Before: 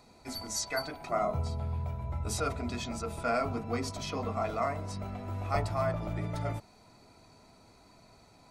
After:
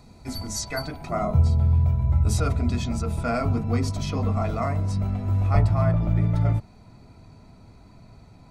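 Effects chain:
bass and treble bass +13 dB, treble +1 dB, from 0:05.48 treble −6 dB
level +2.5 dB

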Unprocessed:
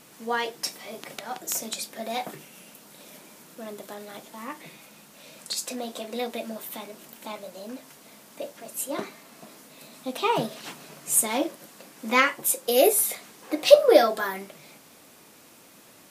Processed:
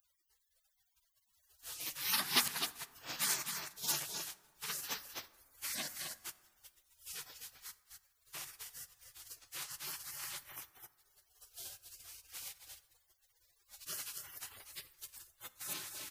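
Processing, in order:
played backwards from end to start
single-tap delay 258 ms −6.5 dB
in parallel at −1 dB: downward compressor, threshold −41 dBFS, peak gain reduction 30.5 dB
on the sum: parametric band 540 Hz −6 dB 1.2 octaves
gate on every frequency bin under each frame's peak −30 dB weak
dense smooth reverb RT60 1.6 s, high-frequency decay 0.4×, DRR 14.5 dB
level +4.5 dB

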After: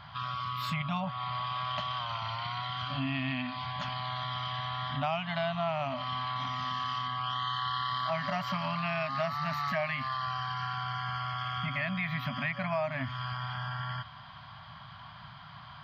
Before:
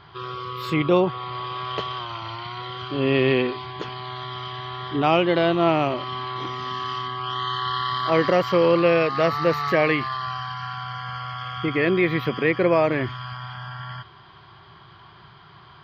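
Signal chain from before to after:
brick-wall band-stop 270–570 Hz
downward compressor 3 to 1, threshold −32 dBFS, peak gain reduction 12.5 dB

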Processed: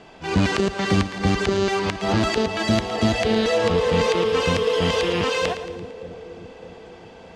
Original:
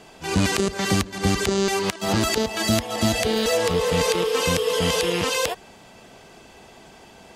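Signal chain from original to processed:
Bessel low-pass filter 3,500 Hz, order 2
on a send: echo with a time of its own for lows and highs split 530 Hz, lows 612 ms, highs 113 ms, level −11.5 dB
on the sum: level +1.5 dB

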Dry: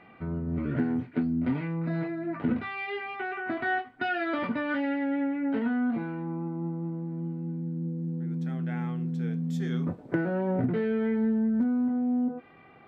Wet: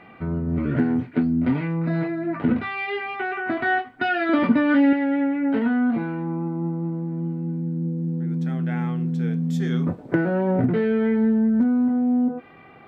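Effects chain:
0:04.29–0:04.93: parametric band 260 Hz +7.5 dB 1.1 octaves
level +6.5 dB

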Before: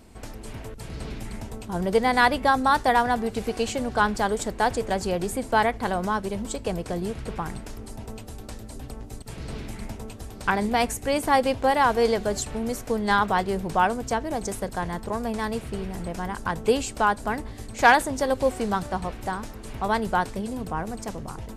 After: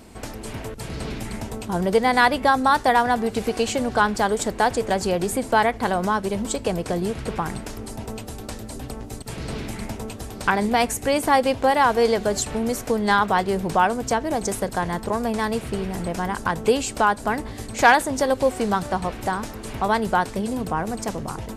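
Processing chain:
in parallel at +1.5 dB: downward compressor, threshold −28 dBFS, peak gain reduction 16 dB
on the sum: low-shelf EQ 70 Hz −8.5 dB

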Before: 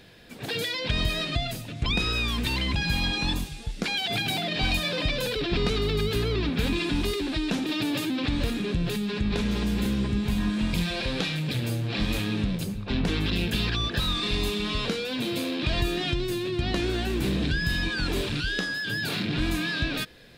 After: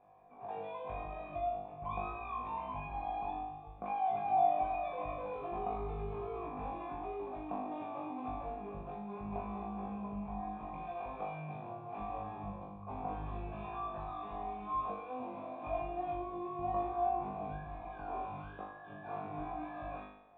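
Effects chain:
formant resonators in series a
flutter between parallel walls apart 3.4 metres, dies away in 0.74 s
level +3.5 dB

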